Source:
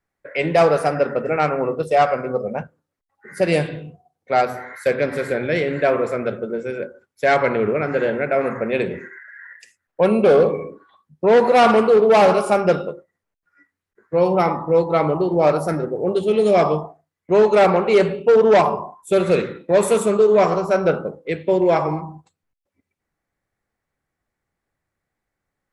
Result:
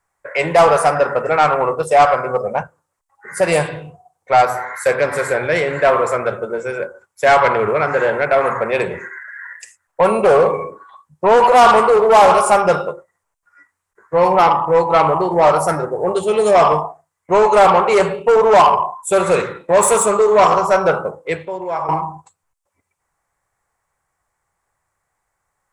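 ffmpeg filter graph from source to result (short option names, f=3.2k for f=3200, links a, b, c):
-filter_complex "[0:a]asettb=1/sr,asplit=3[a][b][c];[a]atrim=end=21.454[d];[b]atrim=start=21.45:end=21.89,asetpts=PTS-STARTPTS,afade=t=in:d=0.004:c=qsin,afade=t=out:st=0.436:d=0.004:c=qsin,highshelf=f=6.7k:g=-7.5,acompressor=threshold=-37dB:ratio=2:attack=3.2:release=140:knee=1:detection=peak[e];[c]atrim=start=21.886[f];[d][e]acrossfade=d=0.004:c1=hsin:c2=qsin[g];[g][f]acrossfade=d=0.004:c1=qsin:c2=hsin,equalizer=f=250:t=o:w=1:g=-11,equalizer=f=1k:t=o:w=1:g=11,equalizer=f=4k:t=o:w=1:g=-4,equalizer=f=8k:t=o:w=1:g=12,acontrast=86,volume=-3dB"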